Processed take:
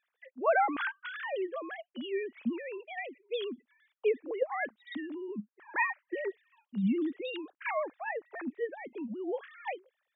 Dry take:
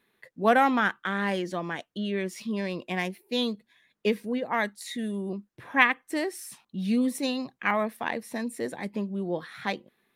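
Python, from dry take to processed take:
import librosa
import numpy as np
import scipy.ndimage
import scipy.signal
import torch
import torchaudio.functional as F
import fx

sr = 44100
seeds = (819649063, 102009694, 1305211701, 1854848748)

y = fx.sine_speech(x, sr)
y = y * 10.0 ** (-6.0 / 20.0)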